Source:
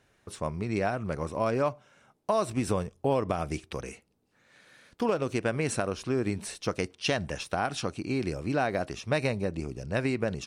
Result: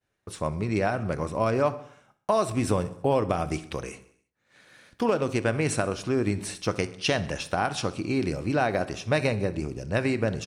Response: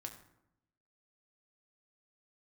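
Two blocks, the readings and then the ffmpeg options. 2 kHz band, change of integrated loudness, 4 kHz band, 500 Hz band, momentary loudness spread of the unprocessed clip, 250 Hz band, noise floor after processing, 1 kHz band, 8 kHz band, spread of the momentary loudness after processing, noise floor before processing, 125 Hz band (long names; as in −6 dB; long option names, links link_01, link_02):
+3.5 dB, +3.0 dB, +3.0 dB, +3.0 dB, 7 LU, +3.0 dB, −77 dBFS, +3.0 dB, +3.0 dB, 8 LU, −69 dBFS, +4.0 dB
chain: -filter_complex "[0:a]agate=range=-33dB:threshold=-56dB:ratio=3:detection=peak,aecho=1:1:64|128|192|256|320:0.112|0.0662|0.0391|0.023|0.0136,asplit=2[link_01][link_02];[1:a]atrim=start_sample=2205,afade=type=out:start_time=0.29:duration=0.01,atrim=end_sample=13230[link_03];[link_02][link_03]afir=irnorm=-1:irlink=0,volume=-2.5dB[link_04];[link_01][link_04]amix=inputs=2:normalize=0"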